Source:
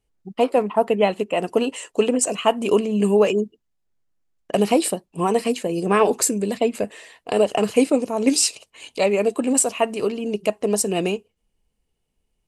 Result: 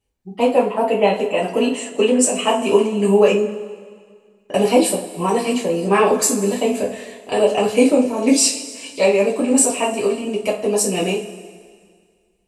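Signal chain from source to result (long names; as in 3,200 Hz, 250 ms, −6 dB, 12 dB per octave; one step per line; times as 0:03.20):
coupled-rooms reverb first 0.28 s, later 1.9 s, from −18 dB, DRR −6 dB
level −3.5 dB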